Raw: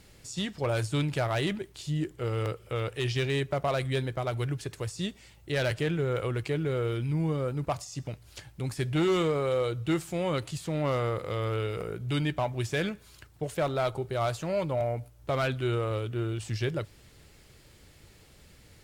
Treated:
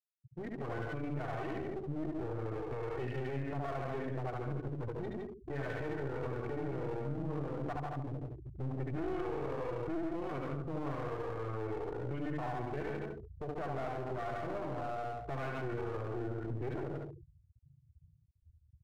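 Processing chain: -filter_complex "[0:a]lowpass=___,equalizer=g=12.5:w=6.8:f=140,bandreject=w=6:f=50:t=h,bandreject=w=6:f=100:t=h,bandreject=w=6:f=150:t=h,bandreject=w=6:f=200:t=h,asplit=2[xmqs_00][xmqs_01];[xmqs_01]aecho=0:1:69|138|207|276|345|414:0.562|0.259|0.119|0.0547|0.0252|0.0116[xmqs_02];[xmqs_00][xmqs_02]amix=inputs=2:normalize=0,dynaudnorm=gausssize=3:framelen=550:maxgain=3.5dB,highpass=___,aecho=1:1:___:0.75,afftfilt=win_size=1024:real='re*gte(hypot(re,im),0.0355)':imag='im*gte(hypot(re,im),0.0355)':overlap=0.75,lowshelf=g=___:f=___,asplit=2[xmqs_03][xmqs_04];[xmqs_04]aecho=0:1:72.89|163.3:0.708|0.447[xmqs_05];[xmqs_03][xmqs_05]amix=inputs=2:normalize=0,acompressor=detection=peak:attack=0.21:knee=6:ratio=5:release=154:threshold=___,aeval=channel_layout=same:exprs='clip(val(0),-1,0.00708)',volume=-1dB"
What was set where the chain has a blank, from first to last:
1600, 56, 2.7, -3, 210, -30dB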